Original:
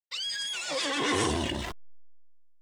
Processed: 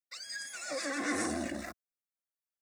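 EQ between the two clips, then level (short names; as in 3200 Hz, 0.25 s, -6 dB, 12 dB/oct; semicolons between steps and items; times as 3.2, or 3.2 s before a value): HPF 110 Hz 12 dB/oct; fixed phaser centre 630 Hz, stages 8; -2.0 dB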